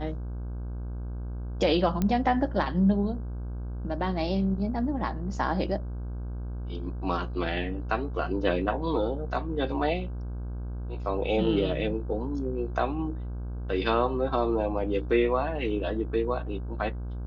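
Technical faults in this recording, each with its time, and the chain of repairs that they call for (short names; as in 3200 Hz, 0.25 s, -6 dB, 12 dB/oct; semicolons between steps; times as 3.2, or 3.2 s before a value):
buzz 60 Hz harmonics 27 -34 dBFS
2.02 pop -14 dBFS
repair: de-click; de-hum 60 Hz, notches 27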